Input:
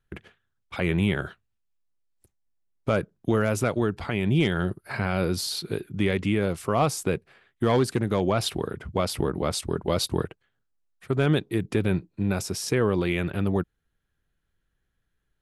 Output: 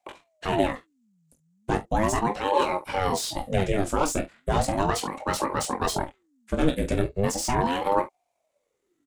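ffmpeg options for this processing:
ffmpeg -i in.wav -filter_complex "[0:a]equalizer=frequency=7200:width=1.6:gain=12,aecho=1:1:20|42|66.2|92.82|122.1:0.631|0.398|0.251|0.158|0.1,acrossover=split=730|1200[link_01][link_02][link_03];[link_03]asoftclip=type=tanh:threshold=-24dB[link_04];[link_01][link_02][link_04]amix=inputs=3:normalize=0,atempo=1.7,aeval=exprs='val(0)*sin(2*PI*440*n/s+440*0.65/0.37*sin(2*PI*0.37*n/s))':channel_layout=same,volume=1dB" out.wav

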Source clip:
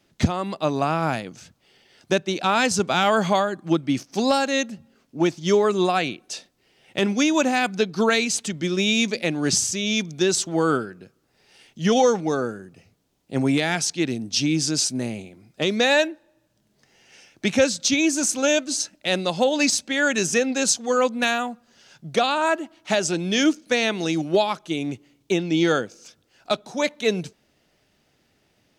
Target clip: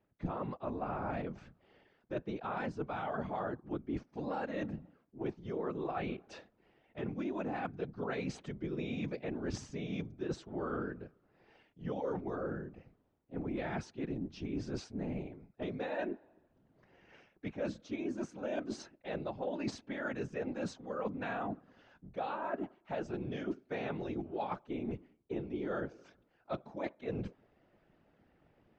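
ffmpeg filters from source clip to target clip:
ffmpeg -i in.wav -af "afftfilt=real='hypot(re,im)*cos(2*PI*random(0))':imag='hypot(re,im)*sin(2*PI*random(1))':win_size=512:overlap=0.75,lowpass=1500,areverse,acompressor=threshold=-40dB:ratio=6,areverse,volume=4dB" out.wav

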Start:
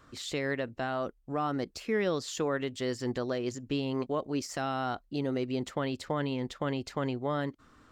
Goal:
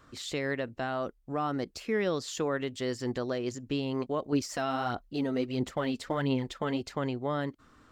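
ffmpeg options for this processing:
ffmpeg -i in.wav -filter_complex "[0:a]asettb=1/sr,asplit=3[link_01][link_02][link_03];[link_01]atrim=end=4.324[link_04];[link_02]atrim=start=4.32:end=6.81,asetpts=PTS-STARTPTS,afade=type=in:duration=0.004:curve=qsin,afade=type=out:start_time=2.486:duration=0.004:curve=qsin,aphaser=in_gain=1:out_gain=1:delay=4.6:decay=0.49:speed=1.5:type=sinusoidal[link_05];[link_03]atrim=start=6.806[link_06];[link_04][link_05]acrossfade=duration=0.004:curve1=hsin:curve2=qsin[link_07];[link_07][link_06]acrossfade=duration=0.004:curve1=qsin:curve2=hsin" out.wav

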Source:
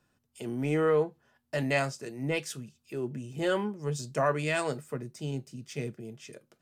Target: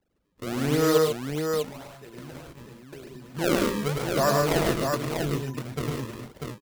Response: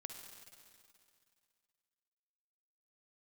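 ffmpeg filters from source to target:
-filter_complex "[0:a]aeval=exprs='val(0)+0.00282*sin(2*PI*7300*n/s)':channel_layout=same,acrusher=samples=35:mix=1:aa=0.000001:lfo=1:lforange=56:lforate=0.88,agate=range=-26dB:threshold=-44dB:ratio=16:detection=peak,asplit=3[link_01][link_02][link_03];[link_01]afade=type=out:start_time=0.97:duration=0.02[link_04];[link_02]acompressor=threshold=-45dB:ratio=8,afade=type=in:start_time=0.97:duration=0.02,afade=type=out:start_time=3.33:duration=0.02[link_05];[link_03]afade=type=in:start_time=3.33:duration=0.02[link_06];[link_04][link_05][link_06]amix=inputs=3:normalize=0,aecho=1:1:104|142|644:0.631|0.562|0.596,volume=3dB"

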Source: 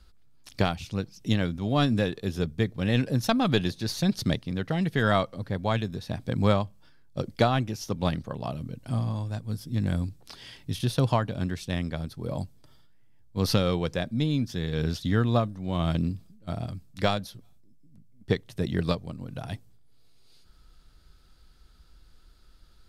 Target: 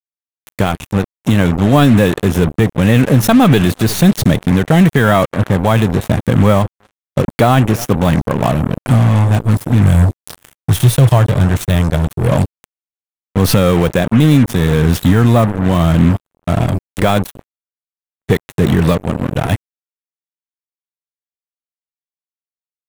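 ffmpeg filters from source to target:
ffmpeg -i in.wav -filter_complex "[0:a]dynaudnorm=framelen=120:gausssize=21:maxgain=6.5dB,asettb=1/sr,asplit=3[link_01][link_02][link_03];[link_01]atrim=end=9.824[link_04];[link_02]atrim=start=9.82:end=12.32,asetpts=PTS-STARTPTS,afade=type=in:duration=0.004:curve=qsin,afade=type=out:start_time=2.496:duration=0.004:curve=qsin,equalizer=frequency=125:width_type=o:width=1:gain=4,equalizer=frequency=250:width_type=o:width=1:gain=-10,equalizer=frequency=1000:width_type=o:width=1:gain=-6,equalizer=frequency=2000:width_type=o:width=1:gain=-6,equalizer=frequency=8000:width_type=o:width=1:gain=3[link_05];[link_03]atrim=start=12.316[link_06];[link_04][link_05]acrossfade=duration=0.004:curve1=hsin:curve2=qsin[link_07];[link_07][link_06]acrossfade=duration=0.004:curve1=qsin:curve2=hsin,acontrast=75,asplit=2[link_08][link_09];[link_09]adelay=355.7,volume=-23dB,highshelf=frequency=4000:gain=-8[link_10];[link_08][link_10]amix=inputs=2:normalize=0,acrusher=bits=3:mix=0:aa=0.5,equalizer=frequency=4800:width_type=o:width=0.77:gain=-11.5,alimiter=level_in=8.5dB:limit=-1dB:release=50:level=0:latency=1,volume=-1dB" out.wav

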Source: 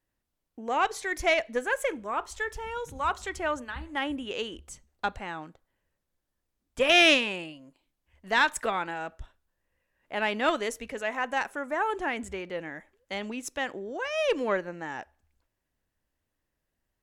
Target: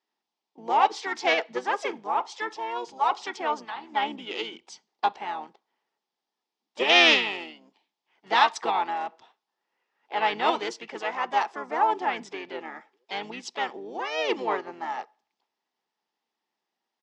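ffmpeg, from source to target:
ffmpeg -i in.wav -filter_complex "[0:a]asplit=4[link_01][link_02][link_03][link_04];[link_02]asetrate=22050,aresample=44100,atempo=2,volume=-15dB[link_05];[link_03]asetrate=33038,aresample=44100,atempo=1.33484,volume=-4dB[link_06];[link_04]asetrate=52444,aresample=44100,atempo=0.840896,volume=-15dB[link_07];[link_01][link_05][link_06][link_07]amix=inputs=4:normalize=0,highpass=frequency=250:width=0.5412,highpass=frequency=250:width=1.3066,equalizer=frequency=280:width_type=q:width=4:gain=-7,equalizer=frequency=560:width_type=q:width=4:gain=-8,equalizer=frequency=850:width_type=q:width=4:gain=10,equalizer=frequency=1500:width_type=q:width=4:gain=-6,equalizer=frequency=3400:width_type=q:width=4:gain=4,equalizer=frequency=5000:width_type=q:width=4:gain=5,lowpass=frequency=6000:width=0.5412,lowpass=frequency=6000:width=1.3066" out.wav

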